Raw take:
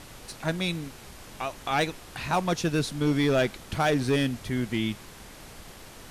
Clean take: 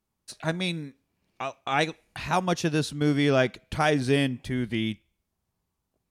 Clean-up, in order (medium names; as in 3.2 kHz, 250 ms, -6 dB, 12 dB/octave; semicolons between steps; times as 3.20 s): clip repair -17.5 dBFS; noise print and reduce 30 dB; trim 0 dB, from 5.75 s -7.5 dB